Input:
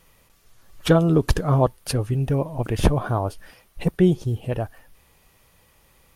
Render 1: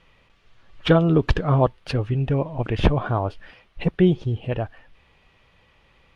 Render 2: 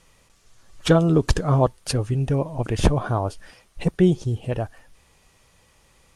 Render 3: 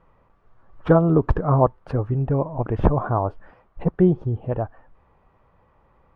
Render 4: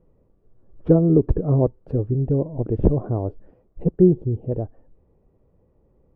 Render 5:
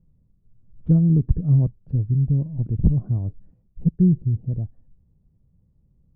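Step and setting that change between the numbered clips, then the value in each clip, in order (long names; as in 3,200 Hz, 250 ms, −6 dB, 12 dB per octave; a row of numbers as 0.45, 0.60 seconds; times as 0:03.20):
low-pass with resonance, frequency: 3,000, 7,800, 1,100, 420, 170 Hertz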